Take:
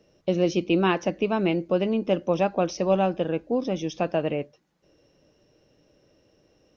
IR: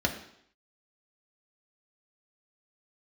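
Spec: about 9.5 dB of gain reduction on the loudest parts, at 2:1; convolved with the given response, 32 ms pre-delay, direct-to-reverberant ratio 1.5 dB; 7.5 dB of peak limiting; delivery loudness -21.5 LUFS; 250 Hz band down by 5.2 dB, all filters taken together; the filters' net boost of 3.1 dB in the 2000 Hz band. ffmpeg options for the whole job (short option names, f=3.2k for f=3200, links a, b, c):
-filter_complex "[0:a]equalizer=f=250:t=o:g=-8.5,equalizer=f=2k:t=o:g=4.5,acompressor=threshold=-37dB:ratio=2,alimiter=level_in=2.5dB:limit=-24dB:level=0:latency=1,volume=-2.5dB,asplit=2[a][b];[1:a]atrim=start_sample=2205,adelay=32[c];[b][c]afir=irnorm=-1:irlink=0,volume=-11dB[d];[a][d]amix=inputs=2:normalize=0,volume=13dB"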